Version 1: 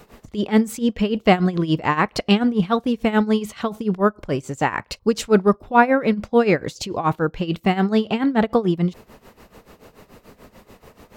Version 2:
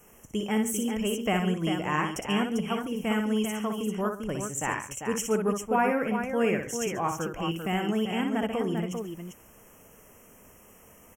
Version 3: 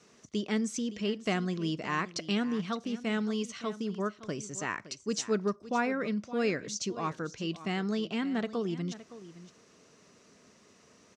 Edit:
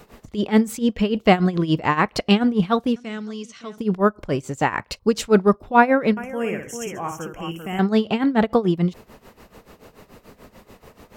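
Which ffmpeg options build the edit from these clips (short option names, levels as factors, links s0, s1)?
-filter_complex "[0:a]asplit=3[s0][s1][s2];[s0]atrim=end=2.962[s3];[2:a]atrim=start=2.958:end=3.782[s4];[s1]atrim=start=3.778:end=6.172[s5];[1:a]atrim=start=6.168:end=7.792[s6];[s2]atrim=start=7.788[s7];[s3][s4]acrossfade=d=0.004:c1=hsin:c2=hsin[s8];[s8][s5]acrossfade=d=0.004:c1=hsin:c2=hsin[s9];[s9][s6]acrossfade=d=0.004:c1=hsin:c2=hsin[s10];[s10][s7]acrossfade=d=0.004:c1=hsin:c2=hsin"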